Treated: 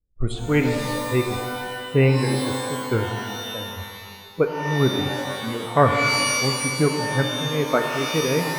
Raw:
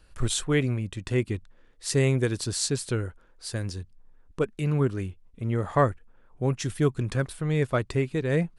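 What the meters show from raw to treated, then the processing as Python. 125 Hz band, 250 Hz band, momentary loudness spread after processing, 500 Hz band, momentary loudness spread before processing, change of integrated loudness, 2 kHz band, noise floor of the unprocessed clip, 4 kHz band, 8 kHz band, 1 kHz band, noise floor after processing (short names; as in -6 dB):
+2.0 dB, +5.0 dB, 11 LU, +5.5 dB, 11 LU, +5.5 dB, +10.0 dB, -57 dBFS, +10.0 dB, +4.0 dB, +10.0 dB, -40 dBFS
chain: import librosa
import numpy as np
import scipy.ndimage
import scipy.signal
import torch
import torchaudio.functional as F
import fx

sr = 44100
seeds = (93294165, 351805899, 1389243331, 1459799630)

p1 = fx.env_lowpass(x, sr, base_hz=320.0, full_db=-20.5)
p2 = p1 + fx.echo_single(p1, sr, ms=750, db=-20.5, dry=0)
p3 = fx.noise_reduce_blind(p2, sr, reduce_db=23)
p4 = fx.peak_eq(p3, sr, hz=5700.0, db=-13.5, octaves=0.42)
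p5 = fx.notch(p4, sr, hz=1800.0, q=12.0)
p6 = fx.tremolo_shape(p5, sr, shape='triangle', hz=2.1, depth_pct=70)
p7 = fx.env_lowpass(p6, sr, base_hz=850.0, full_db=-23.0)
p8 = fx.rev_shimmer(p7, sr, seeds[0], rt60_s=1.8, semitones=12, shimmer_db=-2, drr_db=4.5)
y = p8 * 10.0 ** (6.5 / 20.0)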